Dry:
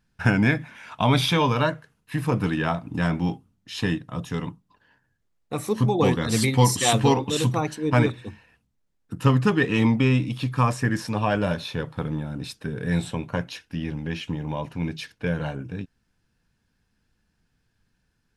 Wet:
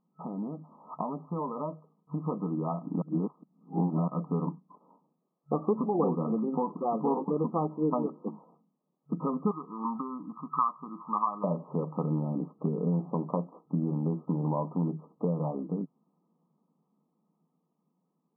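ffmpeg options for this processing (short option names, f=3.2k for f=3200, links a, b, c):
-filter_complex "[0:a]asettb=1/sr,asplit=3[a][b][c];[a]atrim=end=9.514[d];[b]atrim=start=9.51:end=11.44,asetpts=PTS-STARTPTS,afade=t=in:d=0.004:c=qsin,afade=t=out:st=1.926:d=0.004:c=qsin,lowshelf=f=800:t=q:w=3:g=-13.5[e];[c]atrim=start=11.436[f];[d][e]acrossfade=d=0.004:c1=hsin:c2=qsin[g];[g][f]acrossfade=d=0.004:c1=qsin:c2=hsin,asplit=5[h][i][j][k][l];[h]atrim=end=3.022[m];[i]atrim=start=3.018:end=4.082,asetpts=PTS-STARTPTS,areverse[n];[j]atrim=start=4.078:end=5.682[o];[k]atrim=start=5.678:end=7.772,asetpts=PTS-STARTPTS,volume=3.5dB[p];[l]atrim=start=7.768[q];[m][n]acrossfade=d=0.004:c1=hsin:c2=hsin[r];[r][o]acrossfade=d=0.004:c1=hsin:c2=hsin[s];[s][p]acrossfade=d=0.004:c1=hsin:c2=hsin[t];[t][q]acrossfade=d=0.004:c1=hsin:c2=hsin,acompressor=threshold=-31dB:ratio=6,afftfilt=real='re*between(b*sr/4096,140,1300)':imag='im*between(b*sr/4096,140,1300)':win_size=4096:overlap=0.75,dynaudnorm=f=770:g=7:m=6.5dB"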